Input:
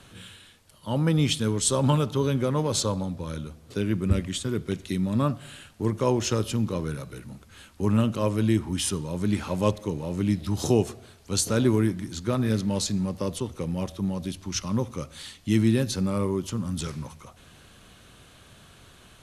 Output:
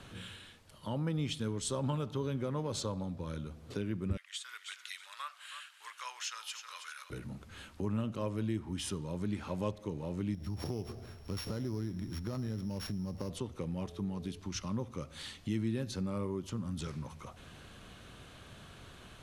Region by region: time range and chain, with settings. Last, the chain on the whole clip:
4.17–7.1 inverse Chebyshev high-pass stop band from 220 Hz, stop band 80 dB + feedback echo 0.318 s, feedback 26%, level -12.5 dB
10.34–13.3 sample sorter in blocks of 8 samples + low shelf 120 Hz +9 dB + compressor 2.5:1, threshold -28 dBFS
13.82–14.38 notch 540 Hz, Q 5.8 + whine 430 Hz -46 dBFS
whole clip: high shelf 5800 Hz -8.5 dB; compressor 2:1, threshold -41 dBFS

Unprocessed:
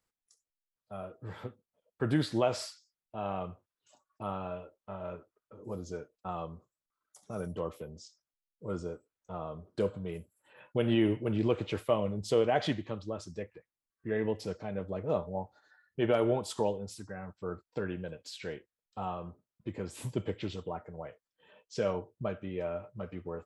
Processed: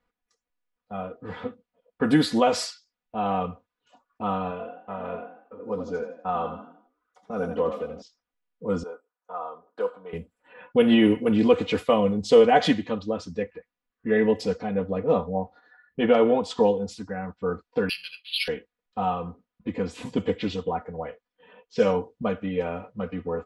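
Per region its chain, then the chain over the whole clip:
4.51–8.02 tone controls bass -6 dB, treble -7 dB + frequency-shifting echo 83 ms, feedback 41%, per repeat +43 Hz, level -7.5 dB
8.83–10.13 HPF 730 Hz + band shelf 3800 Hz -10 dB 2.3 oct
14.66–16.77 air absorption 110 m + notch 1500 Hz, Q 23
17.89–18.48 elliptic high-pass 1200 Hz + resonant high shelf 2100 Hz +11 dB, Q 3 + careless resampling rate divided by 6×, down filtered, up hold
whole clip: low-pass opened by the level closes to 2400 Hz, open at -26.5 dBFS; comb 4.1 ms, depth 90%; gain +7.5 dB

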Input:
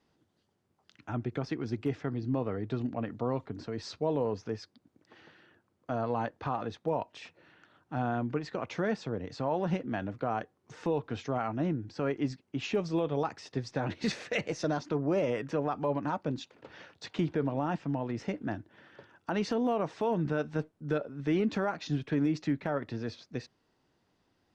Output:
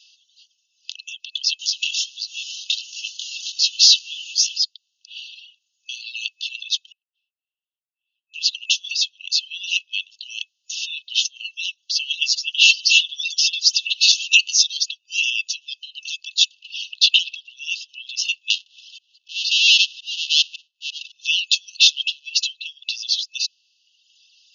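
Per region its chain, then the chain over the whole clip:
1.59–4.58 zero-crossing step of -44 dBFS + tilt +2.5 dB/oct + chorus 1.4 Hz, delay 19 ms, depth 7.4 ms
6.92–8.34 G.711 law mismatch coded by mu + Butterworth band-pass 550 Hz, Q 3.4 + auto swell 0.192 s
11.44–13.87 reverse delay 0.456 s, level -4.5 dB + comb 5.2 ms, depth 85%
16.92–17.36 LPF 5500 Hz + overdrive pedal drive 23 dB, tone 1200 Hz, clips at -20 dBFS
18.5–21.12 half-waves squared off + LPF 3600 Hz + auto swell 0.442 s
21.77–22.41 compressor 4:1, threshold -36 dBFS + overdrive pedal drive 19 dB, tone 2400 Hz, clips at -28.5 dBFS
whole clip: reverb removal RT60 1.2 s; FFT band-pass 2600–6900 Hz; maximiser +32 dB; gain -1 dB

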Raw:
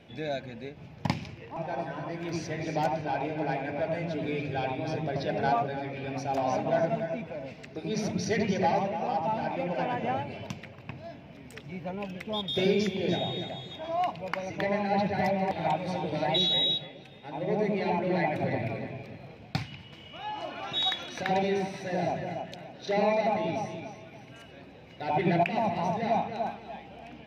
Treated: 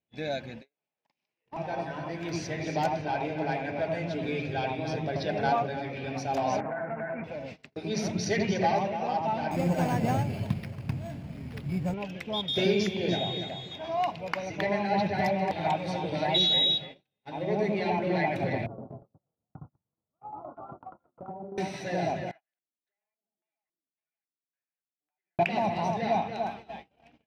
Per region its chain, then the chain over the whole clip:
0.62–1.46 HPF 460 Hz + compressor, threshold -45 dBFS
6.6–7.24 steep low-pass 2200 Hz 48 dB/oct + bell 1400 Hz +11 dB 1.2 oct + compressor 10:1, threshold -30 dBFS
9.51–11.94 CVSD 32 kbps + careless resampling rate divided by 6×, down none, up hold + tone controls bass +13 dB, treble -9 dB
18.66–21.58 Chebyshev low-pass 1400 Hz, order 10 + compressor 10:1, threshold -34 dBFS + tremolo saw down 8.4 Hz, depth 55%
22.31–25.39 LFO low-pass square 1.8 Hz 300–1700 Hz + differentiator + compressor, threshold -55 dBFS
whole clip: bell 5500 Hz +2.5 dB 2.9 oct; gate -42 dBFS, range -37 dB

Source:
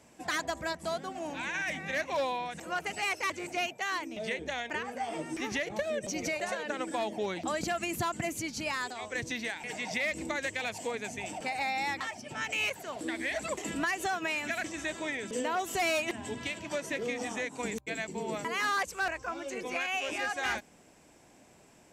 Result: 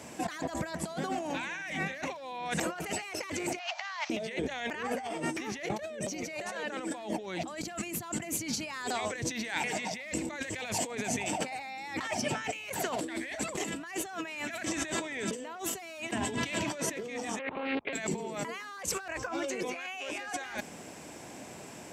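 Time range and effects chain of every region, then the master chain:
3.59–4.1 CVSD 32 kbps + steep high-pass 640 Hz 96 dB/oct + upward compressor, threshold -45 dBFS
17.39–17.93 monotone LPC vocoder at 8 kHz 270 Hz + three-band isolator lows -15 dB, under 250 Hz, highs -21 dB, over 3000 Hz + Doppler distortion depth 0.24 ms
whole clip: HPF 86 Hz; negative-ratio compressor -43 dBFS, ratio -1; gain +6 dB

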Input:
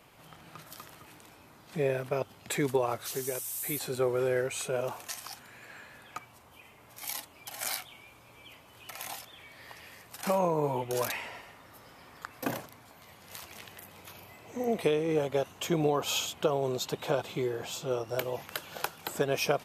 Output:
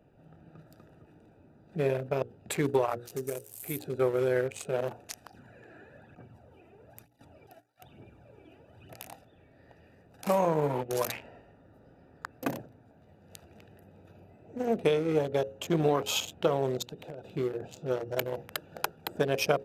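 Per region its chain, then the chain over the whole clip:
5.3–8.94 HPF 82 Hz + phaser 1.1 Hz, delay 3.1 ms, feedback 56% + negative-ratio compressor -44 dBFS, ratio -0.5
16.82–17.37 high shelf 2400 Hz +7.5 dB + compressor 20:1, threshold -35 dBFS
whole clip: Wiener smoothing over 41 samples; notches 60/120/180/240/300/360/420/480/540 Hz; gain +2.5 dB

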